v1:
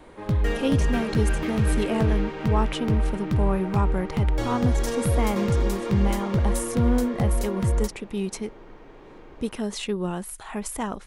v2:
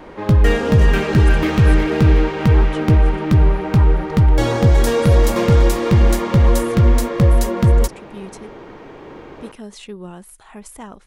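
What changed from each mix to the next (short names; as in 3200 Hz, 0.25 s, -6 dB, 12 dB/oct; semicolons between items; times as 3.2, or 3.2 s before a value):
speech -6.0 dB; background +10.5 dB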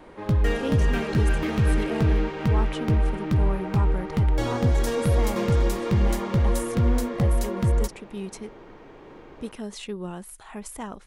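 background -9.0 dB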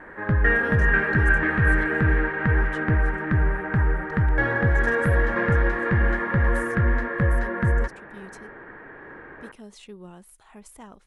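speech -9.0 dB; background: add synth low-pass 1700 Hz, resonance Q 10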